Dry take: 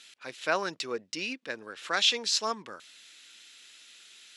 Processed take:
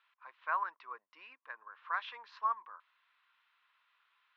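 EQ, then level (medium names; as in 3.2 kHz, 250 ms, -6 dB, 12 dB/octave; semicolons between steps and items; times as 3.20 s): dynamic bell 1.7 kHz, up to +5 dB, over -43 dBFS, Q 1.9; ladder band-pass 1.1 kHz, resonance 80%; distance through air 240 m; +1.0 dB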